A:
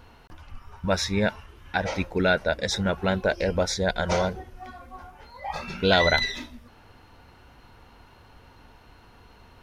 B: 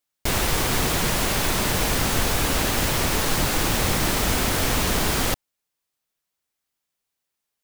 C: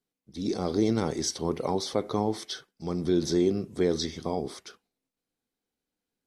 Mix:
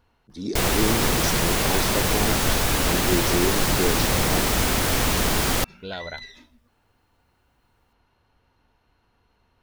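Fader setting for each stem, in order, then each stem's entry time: −14.0, +0.5, 0.0 decibels; 0.00, 0.30, 0.00 seconds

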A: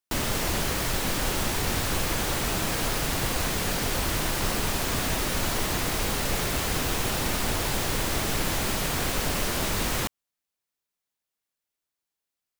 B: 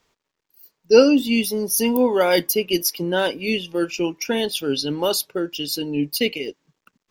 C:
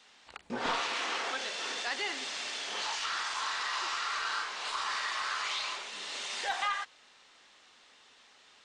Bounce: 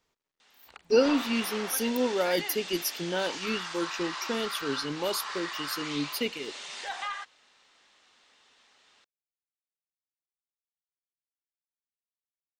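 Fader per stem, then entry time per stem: muted, −9.5 dB, −3.0 dB; muted, 0.00 s, 0.40 s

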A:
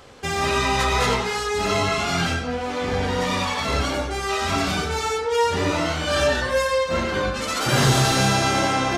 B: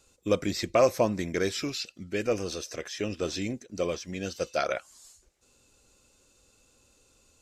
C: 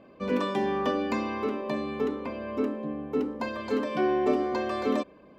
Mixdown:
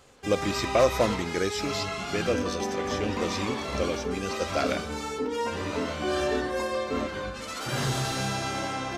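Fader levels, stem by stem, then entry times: −10.5, 0.0, −4.5 decibels; 0.00, 0.00, 2.05 seconds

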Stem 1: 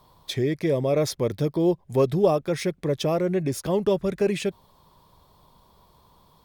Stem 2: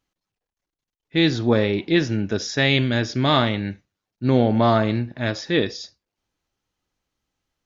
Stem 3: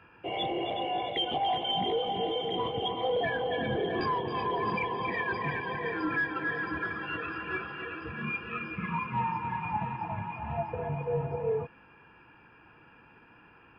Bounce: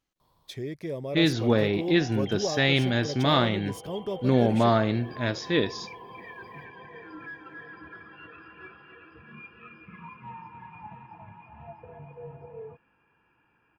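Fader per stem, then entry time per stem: −10.5, −4.0, −12.0 decibels; 0.20, 0.00, 1.10 seconds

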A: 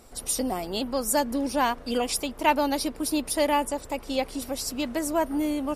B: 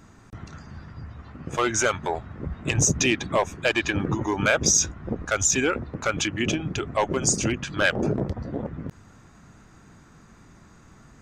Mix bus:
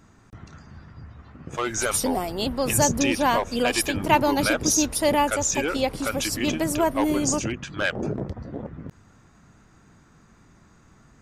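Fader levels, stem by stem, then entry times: +2.5, −3.5 decibels; 1.65, 0.00 seconds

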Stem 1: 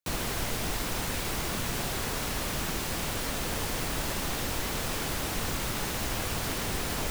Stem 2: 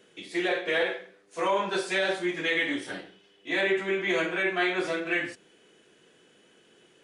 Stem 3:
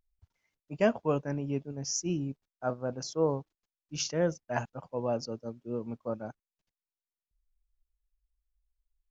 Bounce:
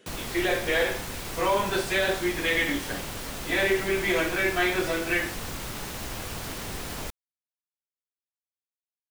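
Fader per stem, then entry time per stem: −3.5 dB, +1.5 dB, muted; 0.00 s, 0.00 s, muted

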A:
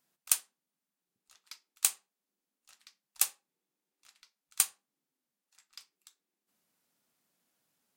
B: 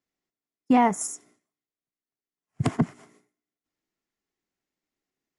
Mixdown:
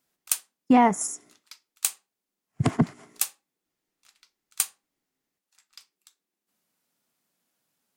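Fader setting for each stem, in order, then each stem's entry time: +1.5, +1.5 decibels; 0.00, 0.00 seconds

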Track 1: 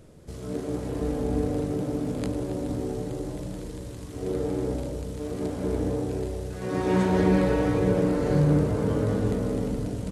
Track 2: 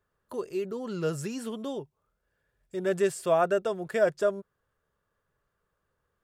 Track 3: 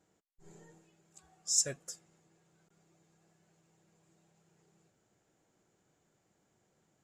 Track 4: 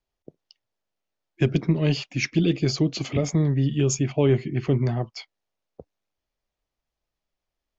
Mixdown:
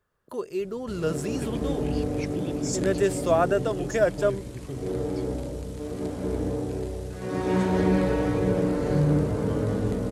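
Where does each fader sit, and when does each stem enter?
−1.0, +2.0, −5.0, −14.5 decibels; 0.60, 0.00, 1.15, 0.00 seconds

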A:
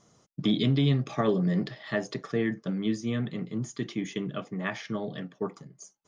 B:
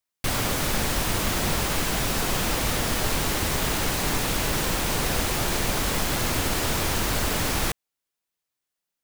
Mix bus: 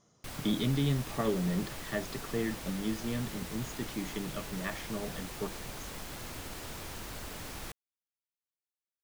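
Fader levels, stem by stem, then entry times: −5.5, −17.5 decibels; 0.00, 0.00 seconds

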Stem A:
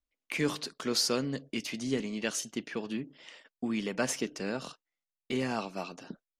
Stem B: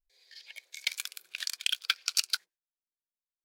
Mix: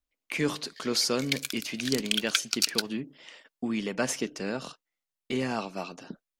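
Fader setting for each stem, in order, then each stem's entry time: +2.0, +2.0 decibels; 0.00, 0.45 seconds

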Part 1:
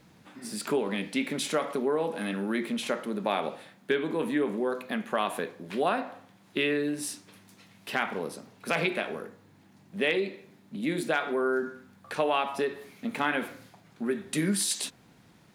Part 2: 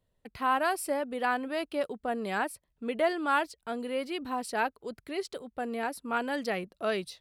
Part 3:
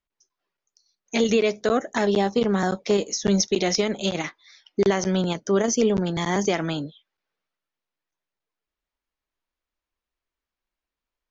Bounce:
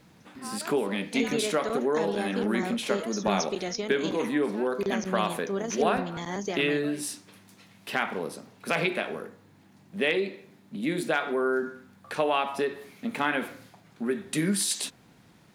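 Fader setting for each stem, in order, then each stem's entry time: +1.0, −14.5, −10.0 decibels; 0.00, 0.00, 0.00 seconds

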